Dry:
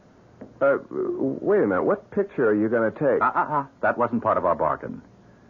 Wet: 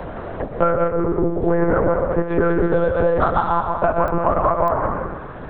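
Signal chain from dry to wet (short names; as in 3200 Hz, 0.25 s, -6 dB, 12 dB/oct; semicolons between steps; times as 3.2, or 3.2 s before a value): 2.5–3.46 median filter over 15 samples; bell 740 Hz +6.5 dB 1.8 oct; compressor, threshold -16 dBFS, peak gain reduction 6 dB; 0.78–1.42 air absorption 270 m; thinning echo 0.123 s, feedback 48%, high-pass 440 Hz, level -7.5 dB; non-linear reverb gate 0.22 s rising, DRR 4 dB; monotone LPC vocoder at 8 kHz 170 Hz; pops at 4.08/4.68, -17 dBFS; three-band squash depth 70%; gain +1.5 dB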